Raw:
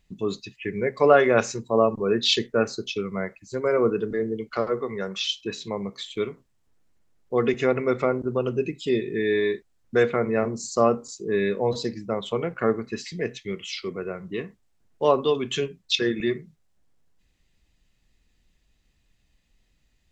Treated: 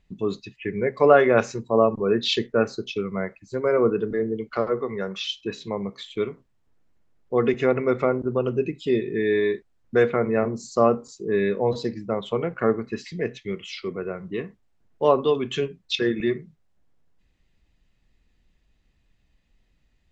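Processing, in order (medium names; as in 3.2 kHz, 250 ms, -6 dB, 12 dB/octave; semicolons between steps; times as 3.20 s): low-pass 2.6 kHz 6 dB/octave; trim +1.5 dB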